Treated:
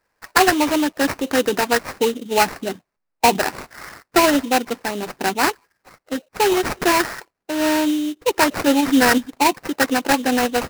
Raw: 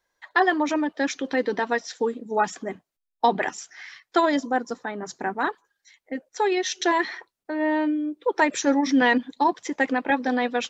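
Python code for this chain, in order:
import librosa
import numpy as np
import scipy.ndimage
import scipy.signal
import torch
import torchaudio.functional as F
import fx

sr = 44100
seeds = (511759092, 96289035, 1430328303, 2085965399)

p1 = fx.rider(x, sr, range_db=10, speed_s=2.0)
p2 = x + F.gain(torch.from_numpy(p1), -2.0).numpy()
y = fx.sample_hold(p2, sr, seeds[0], rate_hz=3400.0, jitter_pct=20)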